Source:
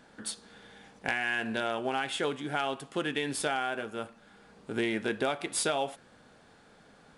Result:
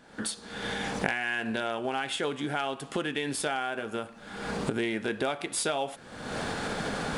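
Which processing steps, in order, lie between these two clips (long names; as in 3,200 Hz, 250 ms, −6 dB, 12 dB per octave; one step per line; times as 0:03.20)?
camcorder AGC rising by 49 dB per second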